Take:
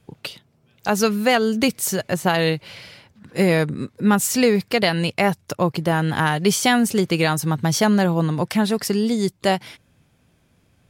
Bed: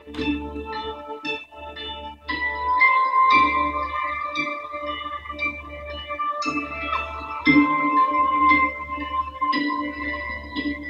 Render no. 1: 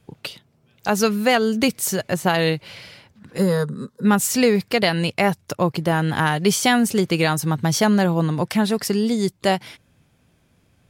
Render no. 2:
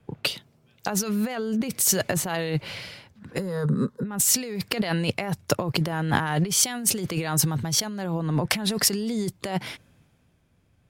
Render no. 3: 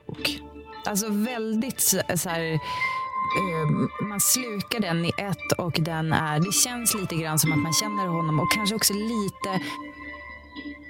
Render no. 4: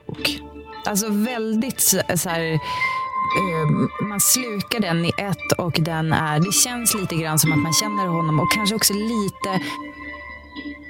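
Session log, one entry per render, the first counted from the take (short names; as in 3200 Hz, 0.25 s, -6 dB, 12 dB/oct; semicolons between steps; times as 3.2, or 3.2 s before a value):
3.38–4.05 fixed phaser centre 470 Hz, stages 8
negative-ratio compressor -26 dBFS, ratio -1; three-band expander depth 40%
add bed -10.5 dB
gain +4.5 dB; limiter -2 dBFS, peak gain reduction 3 dB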